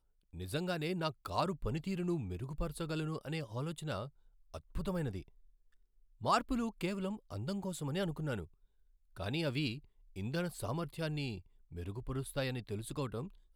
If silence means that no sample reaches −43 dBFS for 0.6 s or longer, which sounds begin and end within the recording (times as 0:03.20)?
0:06.21–0:08.44